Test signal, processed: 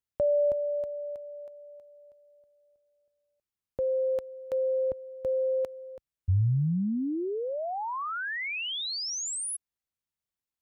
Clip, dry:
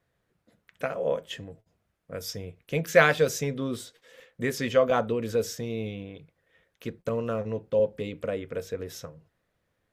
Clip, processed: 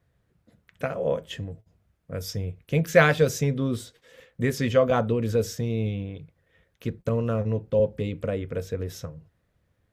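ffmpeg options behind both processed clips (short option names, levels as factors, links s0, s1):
-af "equalizer=f=68:w=0.41:g=12"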